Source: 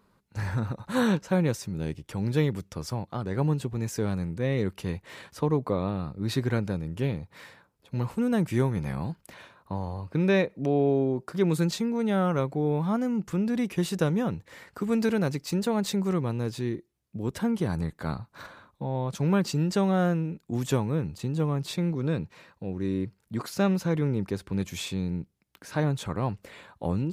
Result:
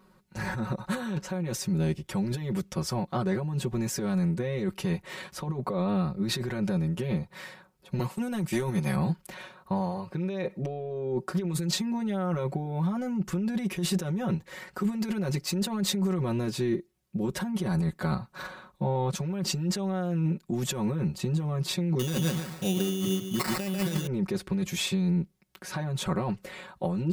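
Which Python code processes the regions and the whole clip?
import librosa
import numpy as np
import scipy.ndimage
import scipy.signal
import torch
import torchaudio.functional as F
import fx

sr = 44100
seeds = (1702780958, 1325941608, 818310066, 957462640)

y = fx.chain(x, sr, fx.highpass(hz=110.0, slope=24),
    fx.high_shelf(hz=2800.0, db=8.5),
    fx.transient(attack_db=-12, sustain_db=-8), at=(7.99, 8.96))
y = fx.chain(y, sr, fx.echo_feedback(ms=146, feedback_pct=32, wet_db=-5.5),
    fx.sample_hold(seeds[0], rate_hz=3200.0, jitter_pct=0),
    fx.high_shelf(hz=2200.0, db=7.5), at=(21.99, 24.07))
y = fx.over_compress(y, sr, threshold_db=-30.0, ratio=-1.0)
y = y + 0.99 * np.pad(y, (int(5.4 * sr / 1000.0), 0))[:len(y)]
y = F.gain(torch.from_numpy(y), -1.5).numpy()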